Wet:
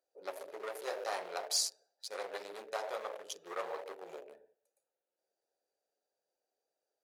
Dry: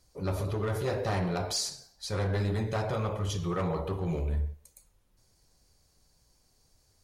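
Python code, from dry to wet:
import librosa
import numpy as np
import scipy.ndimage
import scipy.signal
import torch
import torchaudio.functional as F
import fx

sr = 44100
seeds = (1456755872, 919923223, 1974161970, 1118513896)

y = fx.wiener(x, sr, points=41)
y = scipy.signal.sosfilt(scipy.signal.butter(4, 510.0, 'highpass', fs=sr, output='sos'), y)
y = fx.high_shelf(y, sr, hz=7000.0, db=9.5)
y = y * 10.0 ** (-2.5 / 20.0)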